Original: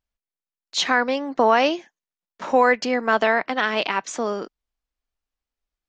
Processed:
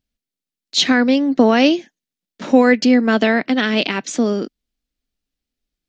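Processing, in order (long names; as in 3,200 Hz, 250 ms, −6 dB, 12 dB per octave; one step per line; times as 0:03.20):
octave-band graphic EQ 125/250/1,000/4,000 Hz +5/+10/−10/+4 dB
level +4 dB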